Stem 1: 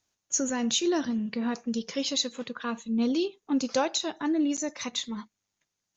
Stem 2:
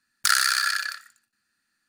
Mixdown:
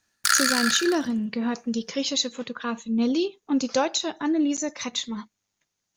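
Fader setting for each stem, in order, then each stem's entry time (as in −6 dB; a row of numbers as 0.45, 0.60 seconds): +3.0, −1.0 decibels; 0.00, 0.00 seconds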